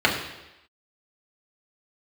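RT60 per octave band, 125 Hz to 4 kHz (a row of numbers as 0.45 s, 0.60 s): 0.80 s, 0.90 s, 0.95 s, 0.95 s, 1.0 s, 1.0 s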